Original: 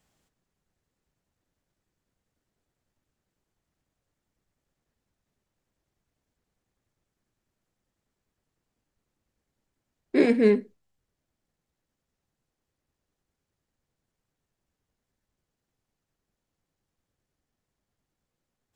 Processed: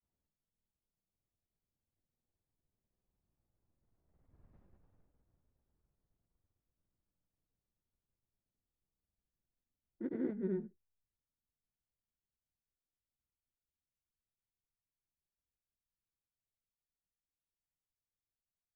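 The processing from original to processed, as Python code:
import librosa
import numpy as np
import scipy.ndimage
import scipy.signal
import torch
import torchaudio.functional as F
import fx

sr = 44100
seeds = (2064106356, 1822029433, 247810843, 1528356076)

y = fx.doppler_pass(x, sr, speed_mps=46, closest_m=5.6, pass_at_s=4.59)
y = scipy.signal.sosfilt(scipy.signal.butter(2, 1100.0, 'lowpass', fs=sr, output='sos'), y)
y = fx.low_shelf(y, sr, hz=130.0, db=9.0)
y = fx.granulator(y, sr, seeds[0], grain_ms=100.0, per_s=20.0, spray_ms=100.0, spread_st=0)
y = y * 10.0 ** (14.5 / 20.0)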